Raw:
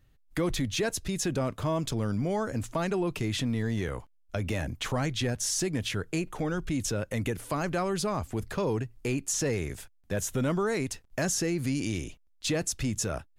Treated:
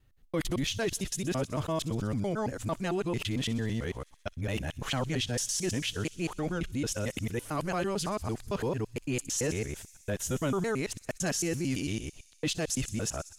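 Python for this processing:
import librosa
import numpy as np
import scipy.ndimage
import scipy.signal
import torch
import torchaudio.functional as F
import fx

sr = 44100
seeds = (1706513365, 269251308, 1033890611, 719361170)

y = fx.local_reverse(x, sr, ms=112.0)
y = fx.echo_wet_highpass(y, sr, ms=63, feedback_pct=81, hz=5100.0, wet_db=-13)
y = fx.dynamic_eq(y, sr, hz=3000.0, q=5.7, threshold_db=-56.0, ratio=4.0, max_db=6)
y = y * 10.0 ** (-2.0 / 20.0)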